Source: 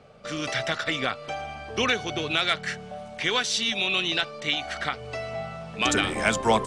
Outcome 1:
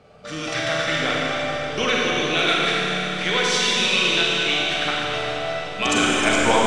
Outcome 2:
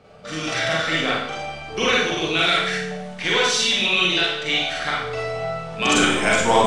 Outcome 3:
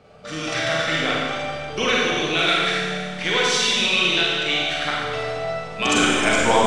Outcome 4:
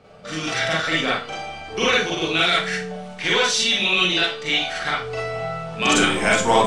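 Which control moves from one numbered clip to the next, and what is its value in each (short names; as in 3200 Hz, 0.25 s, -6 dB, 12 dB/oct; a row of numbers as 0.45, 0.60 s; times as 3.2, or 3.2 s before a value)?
Schroeder reverb, RT60: 3.9, 0.71, 1.8, 0.34 s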